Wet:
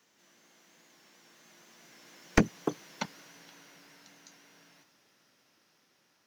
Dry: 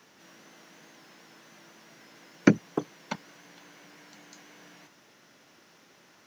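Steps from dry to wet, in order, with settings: one-sided wavefolder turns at -13.5 dBFS; Doppler pass-by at 2.78 s, 16 m/s, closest 13 m; treble shelf 3.5 kHz +7 dB; trim -1.5 dB

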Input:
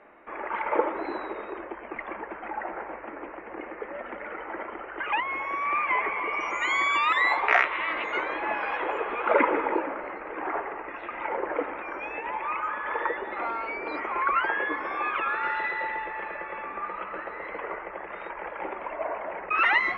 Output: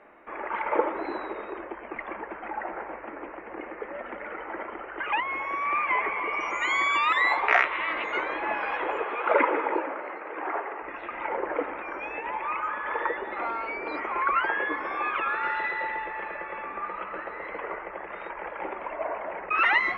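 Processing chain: 9.04–10.82 s: high-pass 300 Hz 12 dB/octave

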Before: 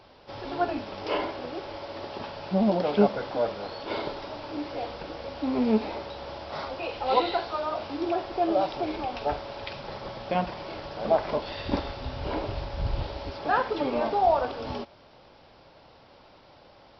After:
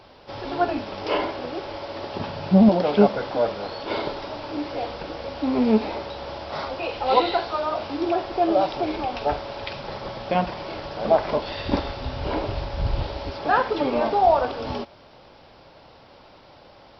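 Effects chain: 2.14–2.69 s: peaking EQ 130 Hz +9.5 dB 1.7 oct; trim +4.5 dB

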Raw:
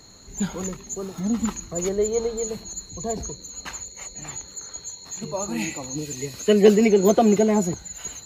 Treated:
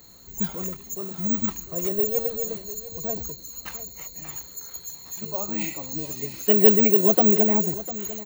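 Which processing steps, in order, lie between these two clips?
delay 700 ms -15.5 dB; careless resampling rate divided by 2×, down none, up zero stuff; trim -4 dB

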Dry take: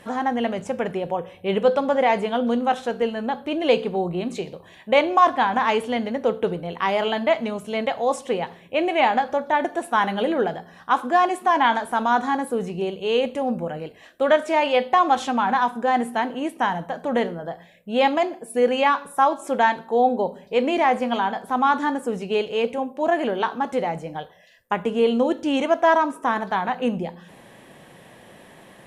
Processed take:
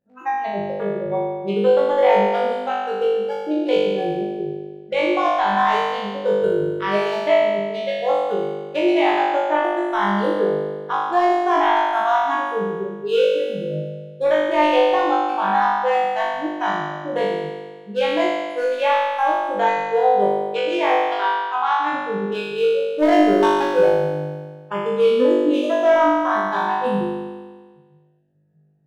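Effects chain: local Wiener filter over 41 samples; 20.44–21.93 s: frequency weighting A; spectral noise reduction 29 dB; peak limiter -15 dBFS, peak gain reduction 10 dB; 22.96–23.89 s: waveshaping leveller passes 2; on a send: flutter echo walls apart 3.4 m, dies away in 1.5 s

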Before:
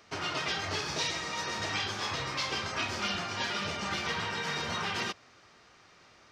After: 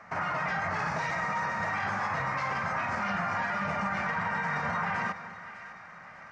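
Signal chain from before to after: FFT filter 100 Hz 0 dB, 180 Hz +9 dB, 380 Hz -9 dB, 560 Hz +5 dB, 830 Hz +9 dB, 2 kHz +7 dB, 3.3 kHz -16 dB, 7.3 kHz -9 dB, 13 kHz -19 dB; peak limiter -26.5 dBFS, peak gain reduction 11 dB; two-band feedback delay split 1.4 kHz, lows 217 ms, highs 603 ms, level -13 dB; trim +3.5 dB

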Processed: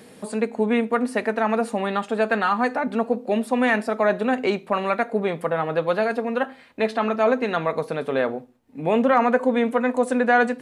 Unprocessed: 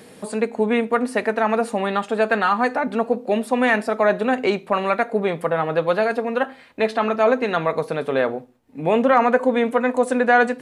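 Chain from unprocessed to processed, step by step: peaking EQ 230 Hz +3 dB 0.35 oct; trim -2.5 dB

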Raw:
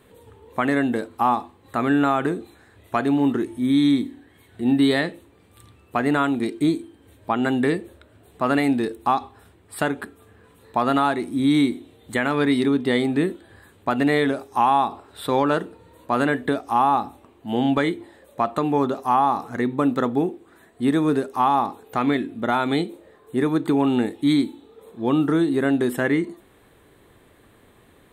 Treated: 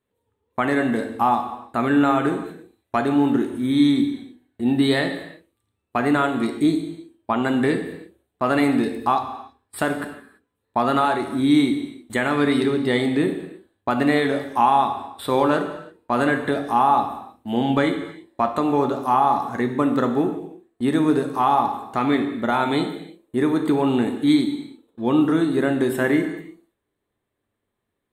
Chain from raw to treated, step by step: gate -41 dBFS, range -26 dB; gated-style reverb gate 360 ms falling, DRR 5.5 dB

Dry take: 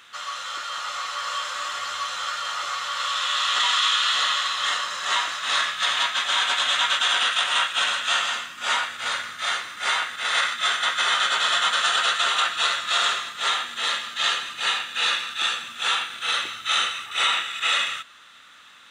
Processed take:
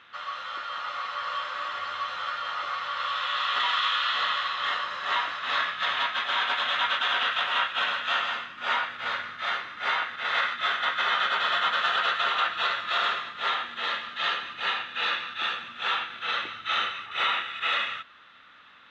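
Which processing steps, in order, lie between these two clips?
distance through air 310 m

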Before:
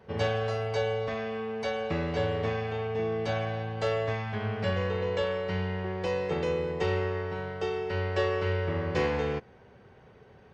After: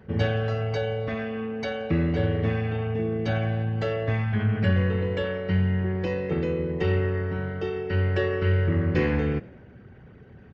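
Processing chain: resonances exaggerated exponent 1.5; high-order bell 660 Hz -9.5 dB; frequency-shifting echo 87 ms, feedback 54%, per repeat +42 Hz, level -22.5 dB; trim +9 dB

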